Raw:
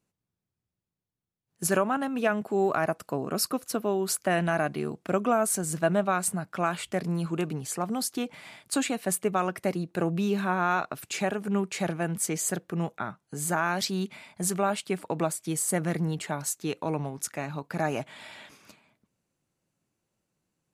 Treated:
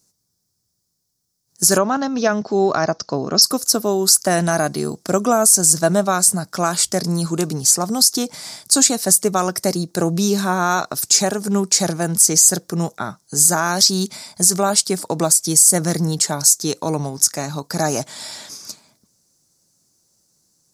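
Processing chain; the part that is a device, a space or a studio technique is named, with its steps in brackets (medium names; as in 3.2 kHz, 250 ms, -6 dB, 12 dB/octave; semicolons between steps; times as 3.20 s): 1.78–3.42 s: steep low-pass 6.3 kHz 72 dB/octave; over-bright horn tweeter (resonant high shelf 3.8 kHz +12 dB, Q 3; peak limiter -10 dBFS, peak gain reduction 11 dB); trim +8.5 dB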